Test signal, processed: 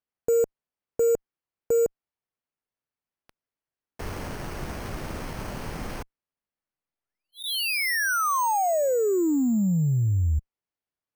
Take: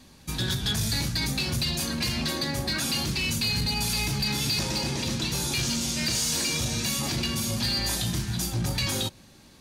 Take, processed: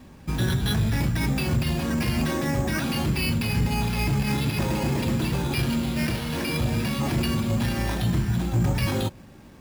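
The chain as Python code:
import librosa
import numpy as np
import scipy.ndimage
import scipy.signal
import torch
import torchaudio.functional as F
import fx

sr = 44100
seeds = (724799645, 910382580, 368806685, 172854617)

y = fx.spacing_loss(x, sr, db_at_10k=21)
y = fx.cheby_harmonics(y, sr, harmonics=(5, 8), levels_db=(-32, -44), full_scale_db=-21.5)
y = np.repeat(scipy.signal.resample_poly(y, 1, 6), 6)[:len(y)]
y = y * librosa.db_to_amplitude(6.5)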